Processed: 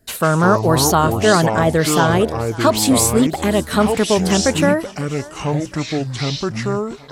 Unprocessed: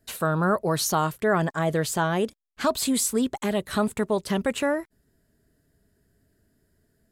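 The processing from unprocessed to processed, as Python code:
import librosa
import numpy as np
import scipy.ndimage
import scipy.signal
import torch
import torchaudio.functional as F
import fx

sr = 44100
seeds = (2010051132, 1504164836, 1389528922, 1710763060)

y = fx.echo_thinned(x, sr, ms=546, feedback_pct=53, hz=420.0, wet_db=-19)
y = fx.echo_pitch(y, sr, ms=120, semitones=-6, count=2, db_per_echo=-6.0)
y = y * 10.0 ** (8.5 / 20.0)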